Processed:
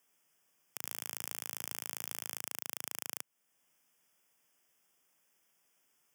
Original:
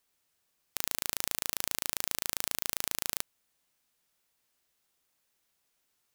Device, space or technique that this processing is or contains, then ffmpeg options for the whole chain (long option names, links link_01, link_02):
PA system with an anti-feedback notch: -filter_complex "[0:a]highpass=frequency=120:width=0.5412,highpass=frequency=120:width=1.3066,asuperstop=centerf=4100:order=8:qfactor=3,alimiter=limit=-15.5dB:level=0:latency=1:release=483,asettb=1/sr,asplit=3[link_01][link_02][link_03];[link_01]atrim=end=0.814[link_04];[link_02]atrim=start=0.81:end=2.42,asetpts=PTS-STARTPTS,afade=type=in:duration=0.004:curve=qsin,afade=type=out:start_time=1.606:duration=0.004:curve=qsin,asplit=2[link_05][link_06];[link_06]adelay=16,volume=-12dB[link_07];[link_05][link_07]amix=inputs=2:normalize=0,atrim=end_sample=71001[link_08];[link_03]atrim=start=2.416[link_09];[link_04][link_08]acrossfade=duration=0.004:curve1=hsin:curve2=qsin[link_10];[link_10][link_09]acrossfade=duration=0.004:curve1=qsin:curve2=hsin,volume=3dB"